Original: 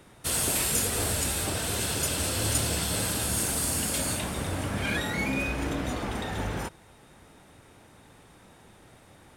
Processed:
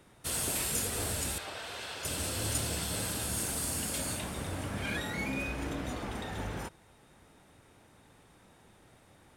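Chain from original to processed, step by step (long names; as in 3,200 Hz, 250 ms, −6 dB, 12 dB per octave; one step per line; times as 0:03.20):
0:01.38–0:02.05: three-way crossover with the lows and the highs turned down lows −16 dB, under 490 Hz, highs −17 dB, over 4,900 Hz
level −6 dB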